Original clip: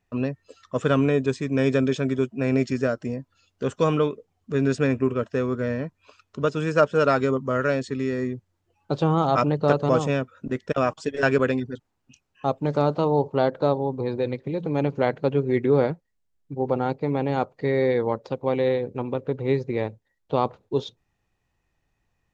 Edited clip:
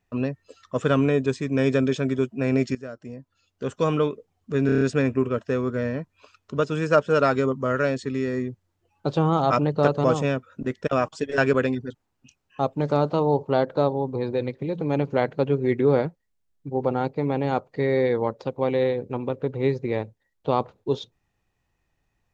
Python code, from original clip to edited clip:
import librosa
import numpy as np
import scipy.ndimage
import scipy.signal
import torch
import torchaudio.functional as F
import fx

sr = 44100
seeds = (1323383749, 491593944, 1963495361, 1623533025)

y = fx.edit(x, sr, fx.fade_in_from(start_s=2.75, length_s=1.34, floor_db=-16.5),
    fx.stutter(start_s=4.66, slice_s=0.03, count=6), tone=tone)